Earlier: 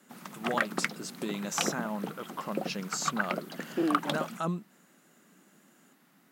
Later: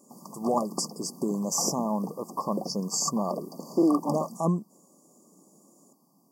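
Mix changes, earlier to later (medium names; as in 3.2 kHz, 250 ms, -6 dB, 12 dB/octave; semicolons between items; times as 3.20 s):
speech +7.0 dB; master: add brick-wall FIR band-stop 1.2–4.5 kHz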